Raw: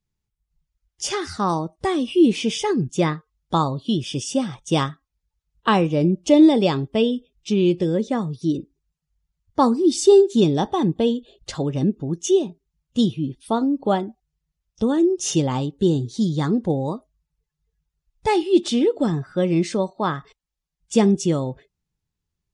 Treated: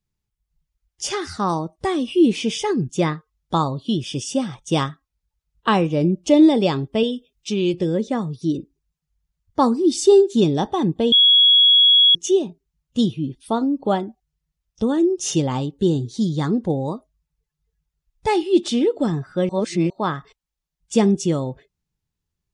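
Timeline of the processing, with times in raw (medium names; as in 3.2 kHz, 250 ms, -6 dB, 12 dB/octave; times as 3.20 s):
7.03–7.74 s: tilt EQ +1.5 dB/octave
11.12–12.15 s: bleep 3.34 kHz -9.5 dBFS
19.49–19.90 s: reverse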